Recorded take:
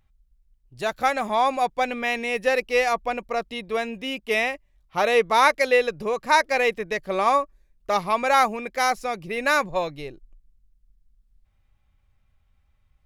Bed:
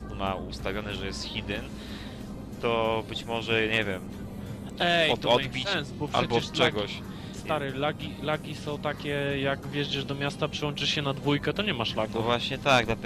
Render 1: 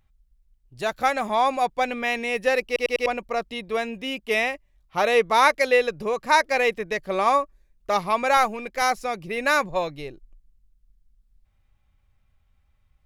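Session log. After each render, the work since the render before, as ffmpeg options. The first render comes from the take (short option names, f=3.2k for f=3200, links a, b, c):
-filter_complex "[0:a]asettb=1/sr,asplit=3[a][b][c];[a]atrim=end=8.374[d];[b]atrim=start=8.37:end=8.82,asetpts=PTS-STARTPTS,afade=t=in:d=0.004:c=qsin,afade=t=out:st=0.446:d=0.004:c=qsin,aeval=exprs='if(lt(val(0),0),0.708*val(0),val(0))':c=same[e];[c]atrim=start=8.816[f];[d][e]acrossfade=d=0.004:c1=hsin:c2=qsin[g];[g][f]acrossfade=d=0.004:c1=qsin:c2=hsin,asplit=5[h][i][j][k][l];[h]atrim=end=2.762[m];[i]atrim=start=2.658:end=2.762[n];[j]atrim=start=2.658:end=2.762[o];[k]atrim=start=2.658:end=2.762[p];[l]atrim=start=3.058[q];[m][n]acrossfade=d=0.004:c1=hsin:c2=hsin[r];[r][o]acrossfade=d=0.004:c1=hsin:c2=hsin[s];[s][p]acrossfade=d=0.004:c1=hsin:c2=hsin[t];[t][q]acrossfade=d=0.004:c1=hsin:c2=hsin"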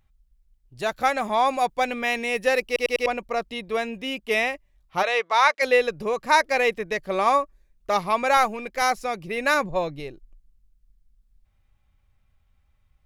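-filter_complex "[0:a]asettb=1/sr,asplit=3[a][b][c];[a]atrim=end=1.484[d];[b]atrim=start=1.48:end=3.03,asetpts=PTS-STARTPTS,afade=t=in:d=0.004:c=qsin,afade=t=out:st=1.546:d=0.004:c=qsin,highshelf=f=5.8k:g=4.5[e];[c]atrim=start=3.026[f];[d][e]acrossfade=d=0.004:c1=hsin:c2=qsin[g];[g][f]acrossfade=d=0.004:c1=qsin:c2=hsin,asplit=3[h][i][j];[h]afade=t=out:st=5.02:d=0.02[k];[i]highpass=670,lowpass=6.5k,afade=t=in:st=5.02:d=0.02,afade=t=out:st=5.61:d=0.02[l];[j]afade=t=in:st=5.61:d=0.02[m];[k][l][m]amix=inputs=3:normalize=0,asettb=1/sr,asplit=3[n][o][p];[n]atrim=end=9.544[q];[o]atrim=start=9.54:end=10,asetpts=PTS-STARTPTS,afade=t=in:d=0.004:c=qsin,afade=t=out:st=0.456:d=0.004:c=qsin,tiltshelf=f=640:g=3.5[r];[p]atrim=start=9.996[s];[q][r]acrossfade=d=0.004:c1=hsin:c2=qsin[t];[t][s]acrossfade=d=0.004:c1=qsin:c2=hsin"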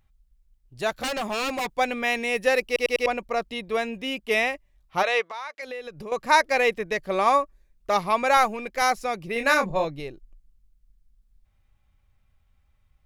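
-filter_complex "[0:a]asettb=1/sr,asplit=3[a][b][c];[a]atrim=end=0.904[d];[b]atrim=start=0.9:end=1.7,asetpts=PTS-STARTPTS,afade=t=in:d=0.004:c=qsin,afade=t=out:st=0.796:d=0.004:c=qsin,aeval=exprs='0.0794*(abs(mod(val(0)/0.0794+3,4)-2)-1)':c=same[e];[c]atrim=start=1.696[f];[d][e]acrossfade=d=0.004:c1=hsin:c2=qsin[g];[g][f]acrossfade=d=0.004:c1=qsin:c2=hsin,asettb=1/sr,asplit=3[h][i][j];[h]atrim=end=5.264[k];[i]atrim=start=5.26:end=6.12,asetpts=PTS-STARTPTS,afade=t=in:d=0.004:c=qsin,afade=t=out:st=0.856:d=0.004:c=qsin,acompressor=threshold=-35dB:ratio=4:attack=3.2:release=140:knee=1:detection=peak[l];[j]atrim=start=6.116[m];[k][l]acrossfade=d=0.004:c1=hsin:c2=qsin[n];[n][m]acrossfade=d=0.004:c1=qsin:c2=hsin,asettb=1/sr,asplit=3[o][p][q];[o]atrim=end=9.334[r];[p]atrim=start=9.33:end=9.85,asetpts=PTS-STARTPTS,afade=t=in:d=0.004:c=qsin,afade=t=out:st=0.516:d=0.004:c=qsin,asplit=2[s][t];[t]adelay=26,volume=-6dB[u];[s][u]amix=inputs=2:normalize=0,atrim=end_sample=22932[v];[q]atrim=start=9.846[w];[r][v]acrossfade=d=0.004:c1=hsin:c2=qsin[x];[x][w]acrossfade=d=0.004:c1=qsin:c2=hsin"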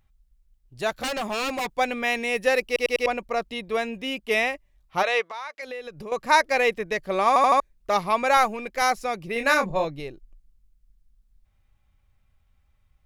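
-filter_complex "[0:a]asplit=5[a][b][c][d][e];[a]atrim=end=7.362[f];[b]atrim=start=7.278:end=7.362[g];[c]atrim=start=7.278:end=7.362[h];[d]atrim=start=7.278:end=7.362[i];[e]atrim=start=7.598[j];[f][g]acrossfade=d=0.004:c1=hsin:c2=hsin[k];[k][h]acrossfade=d=0.004:c1=hsin:c2=hsin[l];[l][i]acrossfade=d=0.004:c1=hsin:c2=hsin[m];[m][j]acrossfade=d=0.004:c1=hsin:c2=hsin"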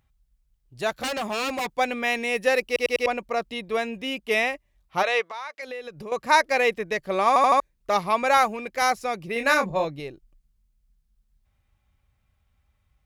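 -af "highpass=42"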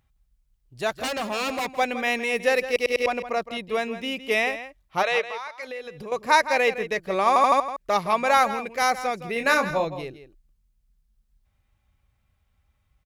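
-filter_complex "[0:a]asplit=2[a][b];[b]adelay=163.3,volume=-12dB,highshelf=f=4k:g=-3.67[c];[a][c]amix=inputs=2:normalize=0"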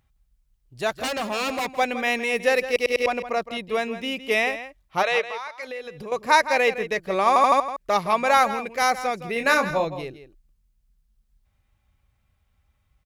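-af "volume=1dB"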